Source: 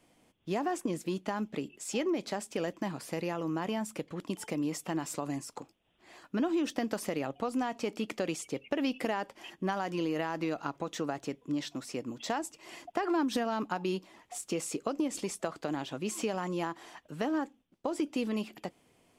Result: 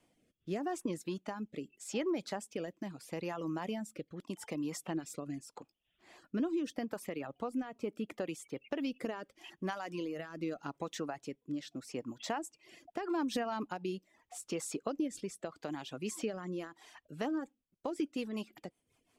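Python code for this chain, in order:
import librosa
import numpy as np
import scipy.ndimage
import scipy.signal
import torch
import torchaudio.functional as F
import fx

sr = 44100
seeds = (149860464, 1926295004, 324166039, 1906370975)

y = fx.dynamic_eq(x, sr, hz=5300.0, q=0.73, threshold_db=-57.0, ratio=4.0, max_db=-8, at=(6.84, 8.6), fade=0.02)
y = fx.rotary_switch(y, sr, hz=0.8, then_hz=5.5, switch_at_s=16.62)
y = fx.dereverb_blind(y, sr, rt60_s=0.68)
y = F.gain(torch.from_numpy(y), -2.5).numpy()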